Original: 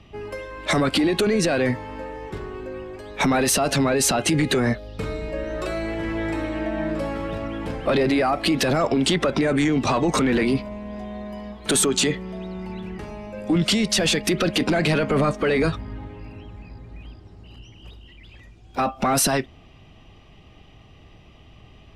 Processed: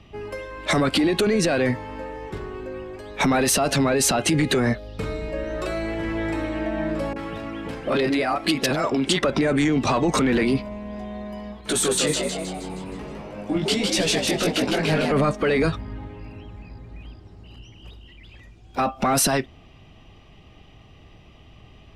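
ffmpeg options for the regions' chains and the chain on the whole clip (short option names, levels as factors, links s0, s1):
-filter_complex "[0:a]asettb=1/sr,asplit=3[s0][s1][s2];[s0]atrim=end=7.134[s3];[s1]atrim=start=7.13:end=9.23,asetpts=PTS-STARTPTS,afade=t=in:d=0.004:c=qsin,afade=t=out:st=2.096:d=0.004:c=qsin,lowshelf=f=120:g=-9.5,acrossover=split=650[s4][s5];[s5]adelay=30[s6];[s4][s6]amix=inputs=2:normalize=0,atrim=end_sample=92610[s7];[s2]atrim=start=9.226[s8];[s3][s7]acrossfade=d=0.004:c1=hsin:c2=qsin[s9];[s9][s8]acrossfade=d=0.004:c1=qsin:c2=hsin,asettb=1/sr,asplit=3[s10][s11][s12];[s10]atrim=end=11.614[s13];[s11]atrim=start=11.61:end=15.12,asetpts=PTS-STARTPTS,afade=t=in:d=0.004:c=qsin,afade=t=out:st=3.506:d=0.004:c=qsin,flanger=delay=15:depth=5.7:speed=1.3,asplit=8[s14][s15][s16][s17][s18][s19][s20][s21];[s15]adelay=157,afreqshift=95,volume=0.668[s22];[s16]adelay=314,afreqshift=190,volume=0.347[s23];[s17]adelay=471,afreqshift=285,volume=0.18[s24];[s18]adelay=628,afreqshift=380,volume=0.0944[s25];[s19]adelay=785,afreqshift=475,volume=0.049[s26];[s20]adelay=942,afreqshift=570,volume=0.0254[s27];[s21]adelay=1099,afreqshift=665,volume=0.0132[s28];[s14][s22][s23][s24][s25][s26][s27][s28]amix=inputs=8:normalize=0,atrim=end_sample=154791[s29];[s12]atrim=start=15.116[s30];[s13][s29]acrossfade=d=0.004:c1=hsin:c2=qsin[s31];[s31][s30]acrossfade=d=0.004:c1=qsin:c2=hsin"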